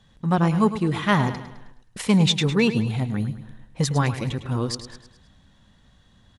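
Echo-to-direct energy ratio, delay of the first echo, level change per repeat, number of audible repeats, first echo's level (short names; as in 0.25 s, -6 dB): -11.0 dB, 0.105 s, -6.5 dB, 4, -12.0 dB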